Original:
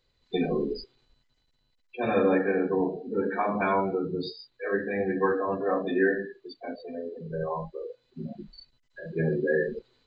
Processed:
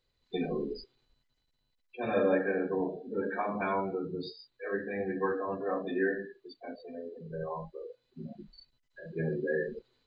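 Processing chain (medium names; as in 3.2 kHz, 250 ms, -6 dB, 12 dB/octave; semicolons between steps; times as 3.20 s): 2.13–3.41 s: small resonant body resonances 590/1600/3500 Hz, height 9 dB; trim -6 dB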